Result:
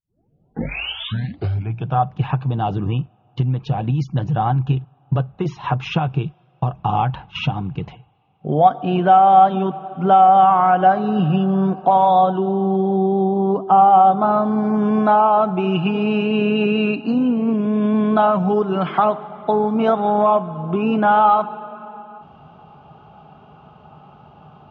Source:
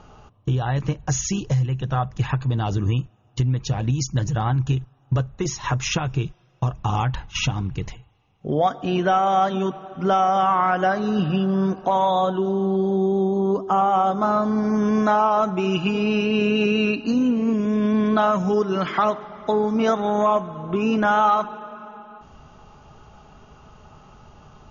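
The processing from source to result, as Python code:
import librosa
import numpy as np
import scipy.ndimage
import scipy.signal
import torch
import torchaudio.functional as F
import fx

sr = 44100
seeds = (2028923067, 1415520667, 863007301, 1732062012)

y = fx.tape_start_head(x, sr, length_s=1.99)
y = fx.cabinet(y, sr, low_hz=110.0, low_slope=12, high_hz=3300.0, hz=(160.0, 760.0, 1900.0), db=(7, 8, -9))
y = F.gain(torch.from_numpy(y), 1.5).numpy()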